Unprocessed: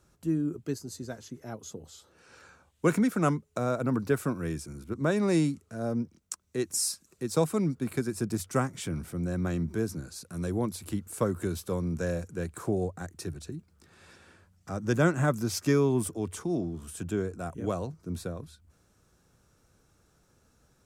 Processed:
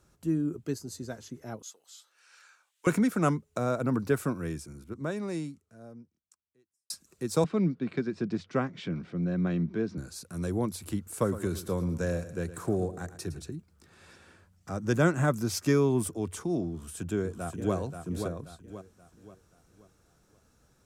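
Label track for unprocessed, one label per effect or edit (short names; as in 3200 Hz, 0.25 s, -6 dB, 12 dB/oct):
1.620000	2.870000	HPF 1500 Hz
4.250000	6.900000	fade out quadratic
7.440000	9.980000	speaker cabinet 160–4200 Hz, peaks and dips at 180 Hz +6 dB, 870 Hz -4 dB, 1300 Hz -3 dB
11.100000	13.470000	feedback echo 0.112 s, feedback 42%, level -14 dB
16.710000	17.750000	echo throw 0.53 s, feedback 40%, level -6.5 dB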